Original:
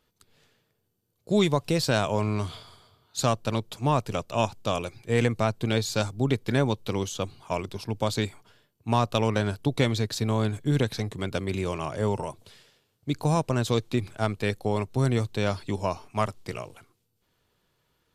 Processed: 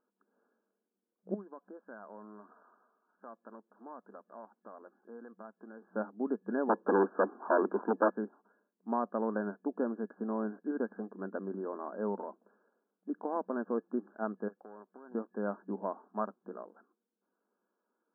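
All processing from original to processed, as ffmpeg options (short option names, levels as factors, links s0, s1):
-filter_complex "[0:a]asettb=1/sr,asplit=3[s0][s1][s2];[s0]atrim=end=1.344[s3];[s1]atrim=start=1.34:end=5.82,asetpts=PTS-STARTPTS,afade=t=in:d=0.004:c=qsin,afade=t=out:st=4.476:d=0.004:c=qsin,tiltshelf=f=1300:g=-5.5,aphaser=in_gain=1:out_gain=1:delay=4.2:decay=0.21:speed=1.7:type=triangular,acompressor=threshold=0.01:ratio=2.5:attack=3.2:release=140:knee=1:detection=peak[s4];[s2]atrim=start=5.816[s5];[s3][s4]acrossfade=d=0.004:c1=hsin:c2=qsin[s6];[s6][s5]acrossfade=d=0.004:c1=qsin:c2=hsin,asettb=1/sr,asplit=3[s7][s8][s9];[s7]atrim=end=6.694[s10];[s8]atrim=start=6.69:end=8.1,asetpts=PTS-STARTPTS,afade=t=in:d=0.004:c=qsin,afade=t=out:st=1.406:d=0.004:c=qsin,aeval=exprs='0.299*sin(PI/2*3.98*val(0)/0.299)':c=same,highpass=f=250:w=0.5412,highpass=f=250:w=1.3066[s11];[s9]atrim=start=8.096[s12];[s10][s11]acrossfade=d=0.004:c1=hsin:c2=qsin[s13];[s13][s12]acrossfade=d=0.004:c1=qsin:c2=hsin,asettb=1/sr,asplit=3[s14][s15][s16];[s14]atrim=end=14.484[s17];[s15]atrim=start=14.48:end=15.15,asetpts=PTS-STARTPTS,afade=t=in:d=0.004:c=qsin,afade=t=out:st=0.666:d=0.004:c=qsin,aeval=exprs='(tanh(10*val(0)+0.4)-tanh(0.4))/10':c=same,acompressor=threshold=0.0158:ratio=3:attack=3.2:release=140:knee=1:detection=peak,aemphasis=mode=production:type=riaa[s18];[s16]atrim=start=15.146[s19];[s17][s18]acrossfade=d=0.004:c1=hsin:c2=qsin[s20];[s20][s19]acrossfade=d=0.004:c1=qsin:c2=hsin,afftfilt=real='re*between(b*sr/4096,190,1700)':imag='im*between(b*sr/4096,190,1700)':win_size=4096:overlap=0.75,lowshelf=f=340:g=3.5,volume=0.376"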